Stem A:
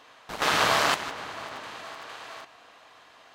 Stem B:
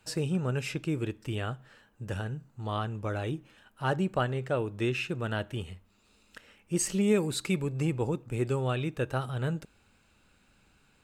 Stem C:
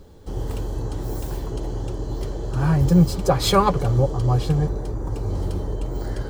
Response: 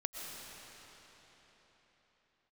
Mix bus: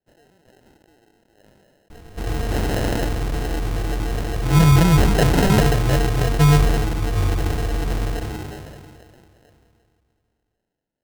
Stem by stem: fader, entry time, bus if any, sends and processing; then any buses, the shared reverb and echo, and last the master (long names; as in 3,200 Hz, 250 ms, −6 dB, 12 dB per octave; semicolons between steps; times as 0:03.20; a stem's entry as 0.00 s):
−5.0 dB, 2.10 s, send −7.5 dB, no processing
−17.5 dB, 0.00 s, send −23.5 dB, high-pass filter 590 Hz 12 dB per octave; parametric band 4,900 Hz −7 dB 0.23 octaves
0.0 dB, 1.90 s, send −16.5 dB, EQ curve with evenly spaced ripples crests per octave 1.8, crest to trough 14 dB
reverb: on, pre-delay 80 ms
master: decimation without filtering 38×; level that may fall only so fast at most 26 dB per second